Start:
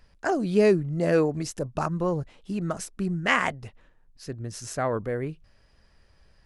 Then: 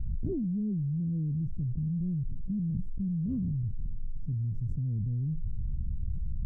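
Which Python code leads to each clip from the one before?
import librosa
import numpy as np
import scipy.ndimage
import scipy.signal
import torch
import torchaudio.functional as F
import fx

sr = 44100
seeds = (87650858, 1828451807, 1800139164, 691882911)

y = scipy.signal.sosfilt(scipy.signal.cheby2(4, 70, 740.0, 'lowpass', fs=sr, output='sos'), x)
y = fx.env_flatten(y, sr, amount_pct=100)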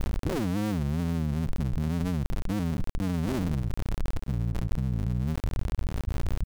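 y = fx.cycle_switch(x, sr, every=2, mode='muted')
y = y * librosa.db_to_amplitude(5.5)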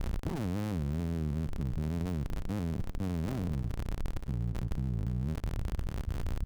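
y = fx.lower_of_two(x, sr, delay_ms=0.64)
y = fx.echo_feedback(y, sr, ms=317, feedback_pct=43, wet_db=-22.0)
y = y * librosa.db_to_amplitude(-4.5)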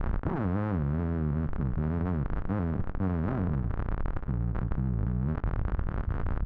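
y = fx.lowpass_res(x, sr, hz=1400.0, q=1.9)
y = fx.doubler(y, sr, ms=21.0, db=-14)
y = y * librosa.db_to_amplitude(4.0)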